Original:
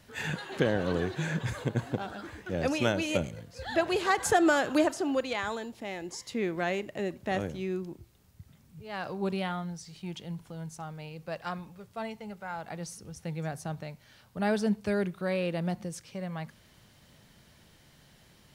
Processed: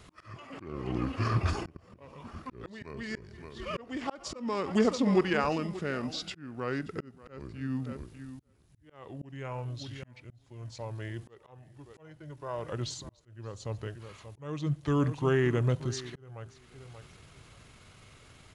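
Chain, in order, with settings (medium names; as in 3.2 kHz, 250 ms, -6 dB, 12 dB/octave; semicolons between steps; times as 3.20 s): feedback delay 581 ms, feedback 20%, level -16.5 dB; pitch shift -6 st; slow attack 790 ms; trim +4.5 dB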